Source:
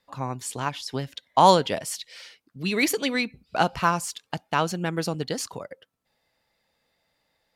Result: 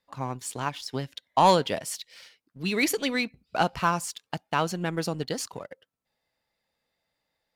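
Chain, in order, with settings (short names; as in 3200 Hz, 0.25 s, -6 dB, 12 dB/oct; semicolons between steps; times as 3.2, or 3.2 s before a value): sample leveller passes 1; gain -5.5 dB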